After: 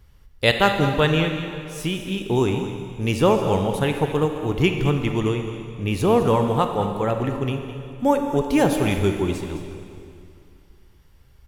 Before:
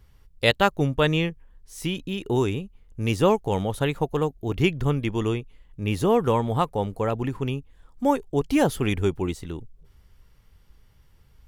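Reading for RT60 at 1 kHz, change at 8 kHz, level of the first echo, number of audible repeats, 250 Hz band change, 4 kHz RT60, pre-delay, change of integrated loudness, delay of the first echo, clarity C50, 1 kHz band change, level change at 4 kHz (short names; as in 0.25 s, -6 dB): 2.5 s, +3.0 dB, -12.5 dB, 1, +3.5 dB, 2.3 s, 26 ms, +3.0 dB, 0.21 s, 5.0 dB, +3.5 dB, +3.5 dB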